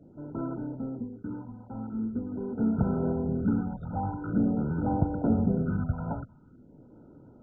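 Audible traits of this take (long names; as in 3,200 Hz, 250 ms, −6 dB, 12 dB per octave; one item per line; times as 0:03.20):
a quantiser's noise floor 10 bits, dither none
phaser sweep stages 4, 0.45 Hz, lowest notch 350–4,000 Hz
MP2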